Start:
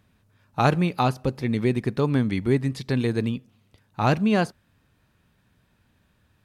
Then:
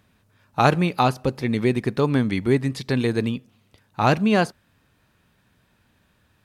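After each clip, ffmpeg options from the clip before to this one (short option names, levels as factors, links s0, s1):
-af "lowshelf=f=220:g=-5,volume=1.58"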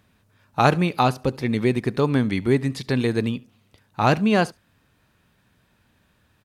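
-af "aecho=1:1:71:0.0631"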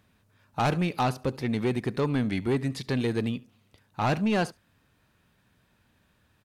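-af "asoftclip=type=tanh:threshold=0.168,volume=0.668"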